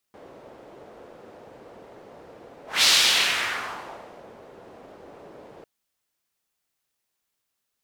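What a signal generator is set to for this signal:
pass-by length 5.50 s, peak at 0:02.70, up 0.20 s, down 1.54 s, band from 510 Hz, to 4,100 Hz, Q 1.6, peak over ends 29 dB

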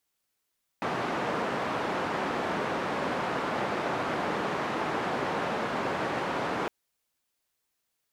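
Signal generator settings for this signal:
band-limited noise 160–1,100 Hz, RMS −30.5 dBFS 5.86 s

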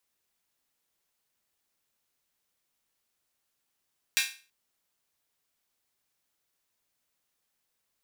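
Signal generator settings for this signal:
open synth hi-hat length 0.33 s, high-pass 2,100 Hz, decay 0.36 s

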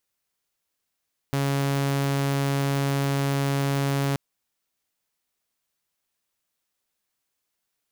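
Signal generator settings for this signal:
tone saw 139 Hz −19.5 dBFS 2.83 s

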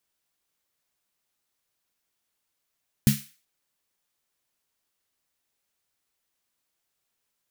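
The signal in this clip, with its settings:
synth snare length 0.38 s, tones 140 Hz, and 210 Hz, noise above 1,700 Hz, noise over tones −10 dB, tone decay 0.22 s, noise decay 0.40 s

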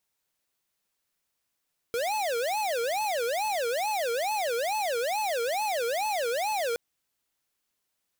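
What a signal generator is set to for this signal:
siren wail 461–866 Hz 2.3 per second square −28.5 dBFS 4.82 s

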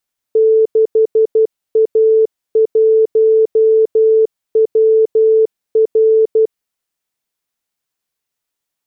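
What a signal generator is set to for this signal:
Morse code "6A1WR" 12 words per minute 441 Hz −7 dBFS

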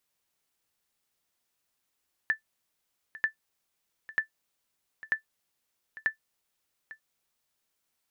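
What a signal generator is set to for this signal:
ping with an echo 1,760 Hz, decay 0.11 s, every 0.94 s, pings 5, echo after 0.85 s, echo −18 dB −16.5 dBFS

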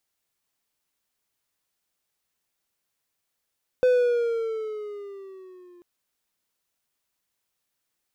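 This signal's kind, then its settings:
pitch glide with a swell triangle, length 1.99 s, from 507 Hz, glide −6.5 semitones, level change −33 dB, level −13 dB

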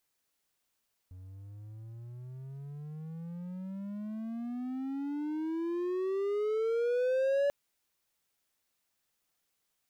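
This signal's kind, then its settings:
pitch glide with a swell triangle, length 6.39 s, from 90.4 Hz, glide +32 semitones, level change +20.5 dB, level −23 dB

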